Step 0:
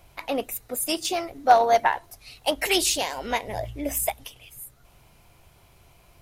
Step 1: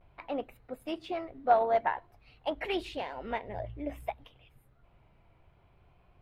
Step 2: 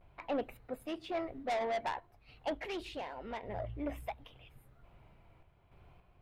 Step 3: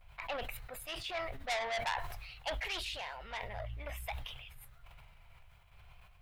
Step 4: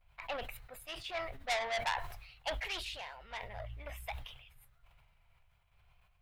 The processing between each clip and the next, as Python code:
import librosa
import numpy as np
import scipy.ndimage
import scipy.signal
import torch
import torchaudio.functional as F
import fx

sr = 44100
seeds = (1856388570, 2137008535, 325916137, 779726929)

y1 = fx.vibrato(x, sr, rate_hz=0.53, depth_cents=55.0)
y1 = fx.air_absorb(y1, sr, metres=470.0)
y1 = y1 * 10.0 ** (-6.0 / 20.0)
y2 = 10.0 ** (-30.5 / 20.0) * np.tanh(y1 / 10.0 ** (-30.5 / 20.0))
y2 = fx.tremolo_random(y2, sr, seeds[0], hz=3.5, depth_pct=55)
y2 = y2 * 10.0 ** (3.0 / 20.0)
y3 = fx.tone_stack(y2, sr, knobs='10-0-10')
y3 = fx.sustainer(y3, sr, db_per_s=39.0)
y3 = y3 * 10.0 ** (9.5 / 20.0)
y4 = fx.upward_expand(y3, sr, threshold_db=-56.0, expansion=1.5)
y4 = y4 * 10.0 ** (2.0 / 20.0)